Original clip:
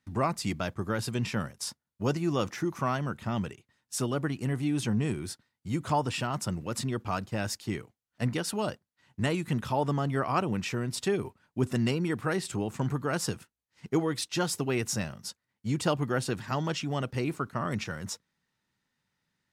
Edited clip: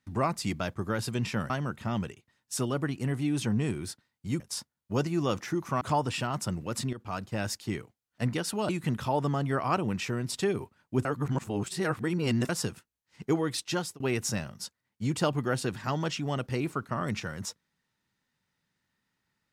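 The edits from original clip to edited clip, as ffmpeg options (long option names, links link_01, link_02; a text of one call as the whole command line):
ffmpeg -i in.wav -filter_complex "[0:a]asplit=9[link_01][link_02][link_03][link_04][link_05][link_06][link_07][link_08][link_09];[link_01]atrim=end=1.502[link_10];[link_02]atrim=start=2.908:end=5.812[link_11];[link_03]atrim=start=1.498:end=2.912[link_12];[link_04]atrim=start=5.808:end=6.93,asetpts=PTS-STARTPTS,afade=type=out:start_time=1.118:duration=0.004:curve=hsin:silence=0.237137[link_13];[link_05]atrim=start=6.93:end=8.692,asetpts=PTS-STARTPTS,afade=type=in:duration=0.56:curve=qsin:silence=0.237137[link_14];[link_06]atrim=start=9.328:end=11.692[link_15];[link_07]atrim=start=11.688:end=13.132,asetpts=PTS-STARTPTS,areverse[link_16];[link_08]atrim=start=13.128:end=14.64,asetpts=PTS-STARTPTS,afade=type=out:start_time=1.132:duration=0.38:curve=qsin[link_17];[link_09]atrim=start=14.64,asetpts=PTS-STARTPTS,afade=type=in:duration=0.004:curve=hsin[link_18];[link_10][link_11]acrossfade=duration=0.004:curve1=hsin:curve2=hsin[link_19];[link_19][link_12]acrossfade=duration=0.004:curve1=hsin:curve2=hsin[link_20];[link_13][link_14]concat=n=2:v=0:a=1[link_21];[link_20][link_21]acrossfade=duration=0.004:curve1=hsin:curve2=hsin[link_22];[link_22][link_15]acrossfade=duration=0.004:curve1=hsin:curve2=hsin[link_23];[link_23][link_16]acrossfade=duration=0.004:curve1=hsin:curve2=hsin[link_24];[link_17][link_18]concat=n=2:v=0:a=1[link_25];[link_24][link_25]acrossfade=duration=0.004:curve1=hsin:curve2=hsin" out.wav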